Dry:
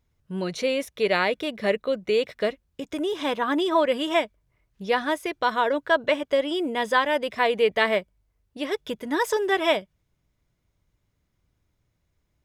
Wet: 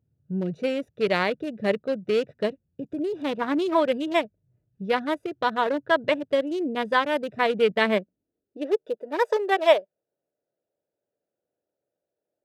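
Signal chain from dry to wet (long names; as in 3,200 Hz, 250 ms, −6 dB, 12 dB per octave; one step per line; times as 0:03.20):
adaptive Wiener filter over 41 samples
high-pass filter sweep 120 Hz → 550 Hz, 0:07.33–0:09.03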